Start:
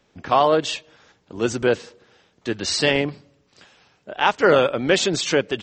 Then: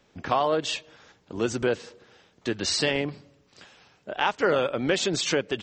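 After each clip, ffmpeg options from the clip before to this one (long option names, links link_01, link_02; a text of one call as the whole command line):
ffmpeg -i in.wav -af "acompressor=threshold=-25dB:ratio=2" out.wav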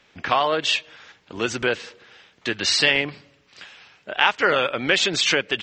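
ffmpeg -i in.wav -af "equalizer=frequency=2400:width=0.52:gain=12.5,volume=-1.5dB" out.wav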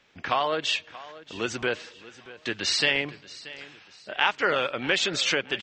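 ffmpeg -i in.wav -af "aecho=1:1:631|1262|1893:0.126|0.0478|0.0182,volume=-5dB" out.wav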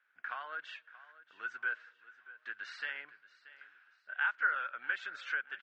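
ffmpeg -i in.wav -af "bandpass=frequency=1500:width_type=q:width=9.6:csg=0" out.wav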